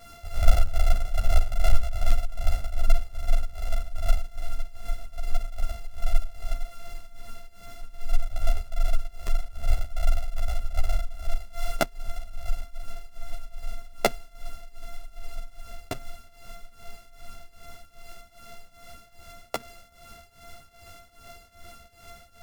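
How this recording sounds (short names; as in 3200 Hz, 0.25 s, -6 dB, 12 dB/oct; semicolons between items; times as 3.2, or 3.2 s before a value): a buzz of ramps at a fixed pitch in blocks of 64 samples; tremolo triangle 2.5 Hz, depth 90%; a shimmering, thickened sound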